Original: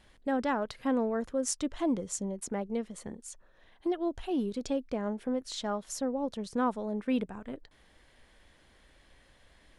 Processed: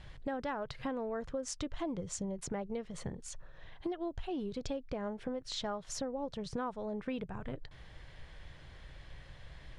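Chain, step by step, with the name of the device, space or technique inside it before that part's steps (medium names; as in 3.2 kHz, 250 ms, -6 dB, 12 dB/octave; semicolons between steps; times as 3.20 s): jukebox (low-pass 5.6 kHz 12 dB/octave; resonant low shelf 180 Hz +6.5 dB, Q 3; compression 4:1, threshold -42 dBFS, peak gain reduction 13.5 dB); trim +5.5 dB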